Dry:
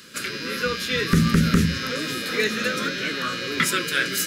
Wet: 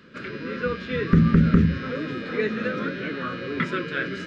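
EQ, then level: tape spacing loss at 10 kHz 45 dB; +2.5 dB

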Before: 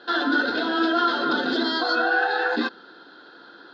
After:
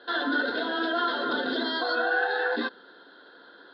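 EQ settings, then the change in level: speaker cabinet 140–3800 Hz, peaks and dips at 150 Hz -10 dB, 220 Hz -5 dB, 330 Hz -8 dB, 810 Hz -6 dB, 1300 Hz -7 dB, 2500 Hz -10 dB; 0.0 dB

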